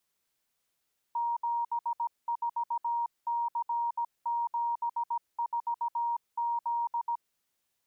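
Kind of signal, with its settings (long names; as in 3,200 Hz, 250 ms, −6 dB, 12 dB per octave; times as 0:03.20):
Morse code "74C74Z" 17 words per minute 941 Hz −27.5 dBFS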